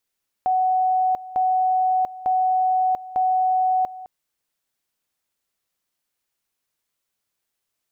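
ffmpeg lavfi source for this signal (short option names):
-f lavfi -i "aevalsrc='pow(10,(-16.5-17*gte(mod(t,0.9),0.69))/20)*sin(2*PI*745*t)':d=3.6:s=44100"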